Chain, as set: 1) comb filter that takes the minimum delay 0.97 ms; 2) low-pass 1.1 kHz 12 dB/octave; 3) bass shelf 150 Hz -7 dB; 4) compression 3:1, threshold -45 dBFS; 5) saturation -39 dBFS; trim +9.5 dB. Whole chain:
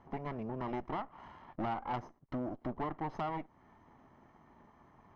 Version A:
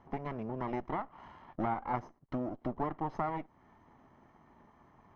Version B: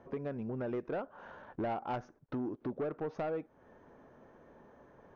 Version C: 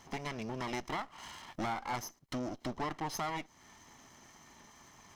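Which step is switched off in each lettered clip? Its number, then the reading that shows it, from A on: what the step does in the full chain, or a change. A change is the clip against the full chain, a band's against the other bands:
5, distortion -14 dB; 1, 500 Hz band +6.0 dB; 2, 4 kHz band +13.0 dB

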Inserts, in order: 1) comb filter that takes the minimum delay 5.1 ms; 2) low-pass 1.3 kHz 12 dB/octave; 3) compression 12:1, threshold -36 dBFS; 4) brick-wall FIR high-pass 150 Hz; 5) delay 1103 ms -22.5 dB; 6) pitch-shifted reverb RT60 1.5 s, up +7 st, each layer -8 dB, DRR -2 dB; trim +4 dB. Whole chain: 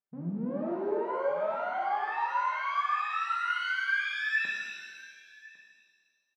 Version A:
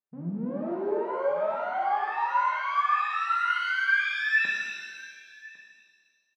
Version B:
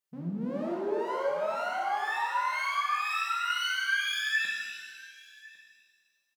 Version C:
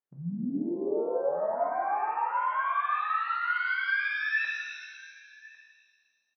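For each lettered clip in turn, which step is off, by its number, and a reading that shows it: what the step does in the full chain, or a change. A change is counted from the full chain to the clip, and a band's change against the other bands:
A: 3, mean gain reduction 2.5 dB; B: 2, 4 kHz band +8.0 dB; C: 1, momentary loudness spread change -2 LU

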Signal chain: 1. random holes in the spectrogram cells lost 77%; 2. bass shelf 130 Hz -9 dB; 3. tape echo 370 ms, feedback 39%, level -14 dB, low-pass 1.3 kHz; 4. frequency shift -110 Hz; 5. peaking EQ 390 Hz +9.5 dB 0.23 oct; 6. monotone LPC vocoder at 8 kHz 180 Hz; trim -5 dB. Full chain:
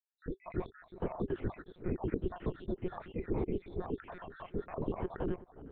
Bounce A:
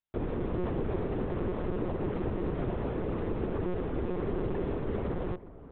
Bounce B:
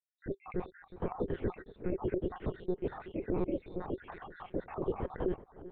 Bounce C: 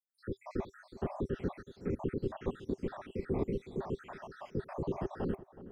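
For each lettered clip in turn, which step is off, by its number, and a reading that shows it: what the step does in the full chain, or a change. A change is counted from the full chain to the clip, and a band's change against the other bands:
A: 1, 125 Hz band +1.5 dB; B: 4, 125 Hz band -2.5 dB; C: 6, crest factor change -3.0 dB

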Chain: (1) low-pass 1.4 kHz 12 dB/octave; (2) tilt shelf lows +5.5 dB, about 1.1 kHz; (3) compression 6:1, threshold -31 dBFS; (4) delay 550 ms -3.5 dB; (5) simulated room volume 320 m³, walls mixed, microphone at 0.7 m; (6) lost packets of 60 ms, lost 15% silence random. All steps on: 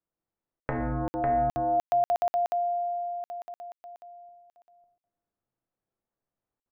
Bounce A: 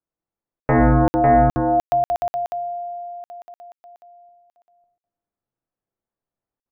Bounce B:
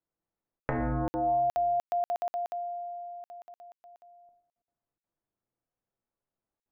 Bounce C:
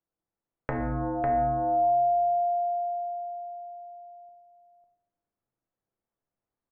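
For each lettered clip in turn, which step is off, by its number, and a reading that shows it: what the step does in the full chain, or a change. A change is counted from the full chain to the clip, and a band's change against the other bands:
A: 3, mean gain reduction 4.0 dB; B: 4, 1 kHz band -1.5 dB; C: 6, loudness change +1.5 LU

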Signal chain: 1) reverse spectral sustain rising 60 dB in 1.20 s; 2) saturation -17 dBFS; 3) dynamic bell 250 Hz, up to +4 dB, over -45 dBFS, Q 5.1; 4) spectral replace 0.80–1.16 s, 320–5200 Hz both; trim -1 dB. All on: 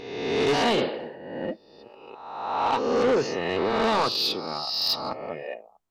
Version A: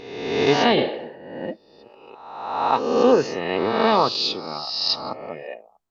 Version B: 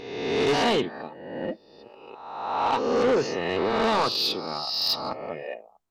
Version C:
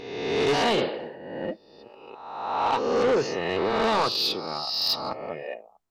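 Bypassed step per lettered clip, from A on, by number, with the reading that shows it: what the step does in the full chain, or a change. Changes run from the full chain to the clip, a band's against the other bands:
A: 2, distortion -9 dB; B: 4, crest factor change -2.5 dB; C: 3, 250 Hz band -1.5 dB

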